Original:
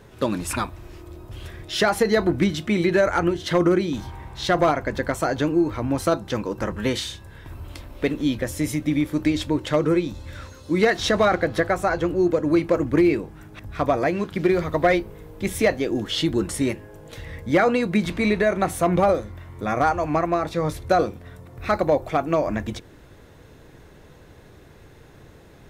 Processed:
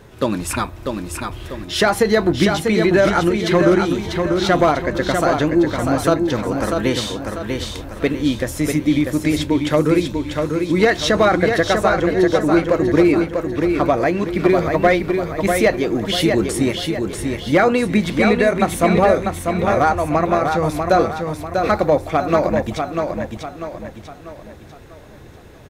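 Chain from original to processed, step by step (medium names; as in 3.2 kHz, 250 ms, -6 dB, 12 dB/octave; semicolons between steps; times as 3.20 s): feedback delay 644 ms, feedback 42%, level -5 dB; trim +4 dB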